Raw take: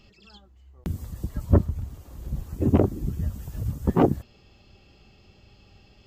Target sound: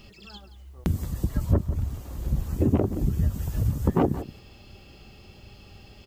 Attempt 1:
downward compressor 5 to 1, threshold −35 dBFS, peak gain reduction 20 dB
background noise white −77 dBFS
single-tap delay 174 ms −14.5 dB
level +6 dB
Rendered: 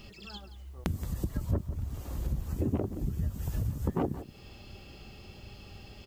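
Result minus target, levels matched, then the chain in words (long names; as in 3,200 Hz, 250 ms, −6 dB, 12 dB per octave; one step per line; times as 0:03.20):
downward compressor: peak gain reduction +8.5 dB
downward compressor 5 to 1, threshold −24.5 dBFS, peak gain reduction 12 dB
background noise white −77 dBFS
single-tap delay 174 ms −14.5 dB
level +6 dB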